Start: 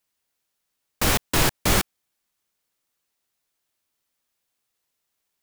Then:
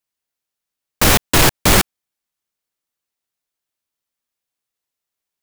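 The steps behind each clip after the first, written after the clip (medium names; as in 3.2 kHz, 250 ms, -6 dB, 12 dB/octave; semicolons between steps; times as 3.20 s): waveshaping leveller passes 3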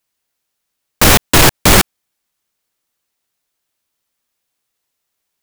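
loudness maximiser +10.5 dB; trim -1 dB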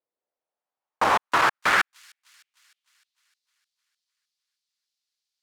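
band-pass sweep 500 Hz -> 4.5 kHz, 0.12–3.33 s; feedback echo behind a high-pass 305 ms, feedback 58%, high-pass 5 kHz, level -17.5 dB; trim -1.5 dB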